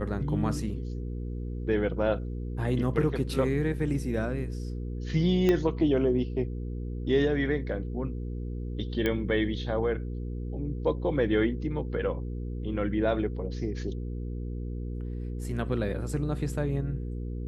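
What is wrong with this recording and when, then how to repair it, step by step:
mains hum 60 Hz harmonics 8 −34 dBFS
0:05.49: click −13 dBFS
0:09.06: click −15 dBFS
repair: click removal
hum removal 60 Hz, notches 8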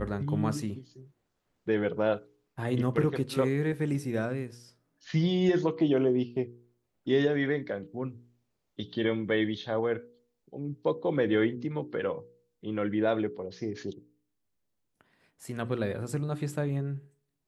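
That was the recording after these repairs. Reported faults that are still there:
0:05.49: click
0:09.06: click

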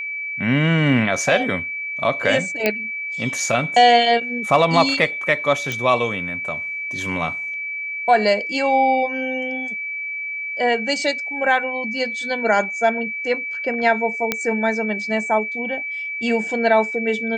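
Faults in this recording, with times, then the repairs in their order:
whistle 2,300 Hz −25 dBFS
0:02.66: click −4 dBFS
0:05.72: click
0:14.32: click −4 dBFS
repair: click removal
notch filter 2,300 Hz, Q 30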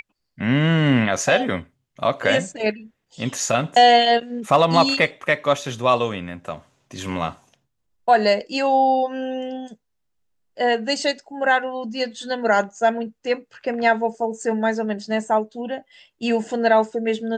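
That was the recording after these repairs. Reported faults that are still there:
none of them is left

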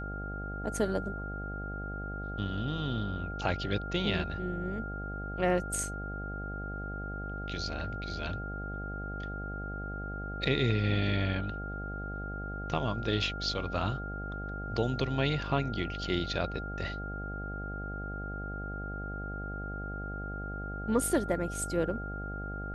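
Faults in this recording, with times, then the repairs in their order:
mains buzz 50 Hz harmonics 16 −39 dBFS
whistle 1,400 Hz −40 dBFS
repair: notch filter 1,400 Hz, Q 30
hum removal 50 Hz, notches 16

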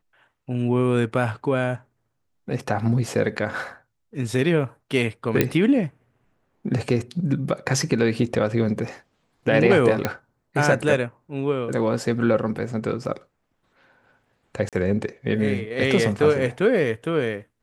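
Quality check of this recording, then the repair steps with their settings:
0:05.41: click −4 dBFS
0:10.05: click −8 dBFS
0:14.69–0:14.73: drop-out 37 ms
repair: click removal
repair the gap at 0:14.69, 37 ms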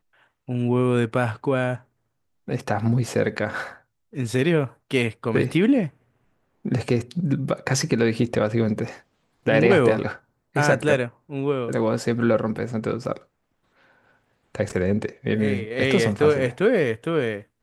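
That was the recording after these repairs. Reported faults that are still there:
none of them is left

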